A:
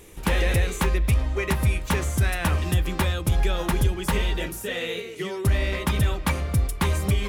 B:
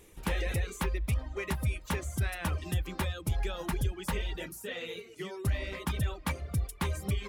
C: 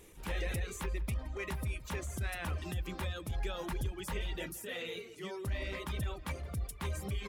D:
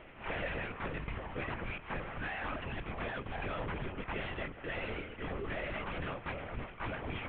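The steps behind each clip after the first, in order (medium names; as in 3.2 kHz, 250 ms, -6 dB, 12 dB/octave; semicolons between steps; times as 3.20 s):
reverb removal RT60 0.68 s; trim -8.5 dB
compression 1.5:1, threshold -36 dBFS, peak gain reduction 4.5 dB; transient shaper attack -8 dB, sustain +1 dB; echo from a far wall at 29 m, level -19 dB
CVSD coder 16 kbps; overdrive pedal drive 19 dB, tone 1.8 kHz, clips at -26 dBFS; LPC vocoder at 8 kHz whisper; trim -2 dB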